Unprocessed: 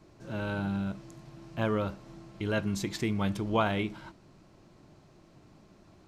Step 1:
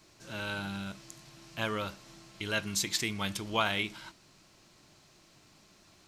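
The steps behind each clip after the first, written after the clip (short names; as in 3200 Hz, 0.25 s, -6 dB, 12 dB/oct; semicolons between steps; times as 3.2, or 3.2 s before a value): tilt shelf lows -9.5 dB, about 1500 Hz; gain +1.5 dB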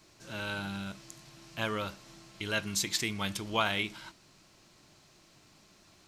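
nothing audible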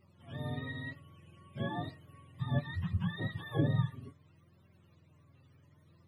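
spectrum mirrored in octaves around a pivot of 610 Hz; flange 0.64 Hz, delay 5 ms, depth 2.7 ms, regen +43%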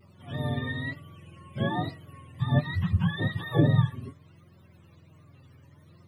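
vibrato 1.2 Hz 56 cents; gain +8.5 dB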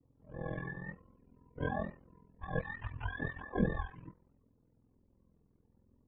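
low-pass opened by the level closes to 390 Hz, open at -19.5 dBFS; mistuned SSB -99 Hz 200–2800 Hz; ring modulator 21 Hz; gain -2.5 dB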